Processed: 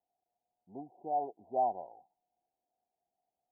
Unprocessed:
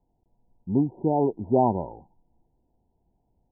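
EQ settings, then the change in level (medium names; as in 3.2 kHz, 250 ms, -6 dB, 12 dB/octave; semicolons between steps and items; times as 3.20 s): vowel filter a; -2.5 dB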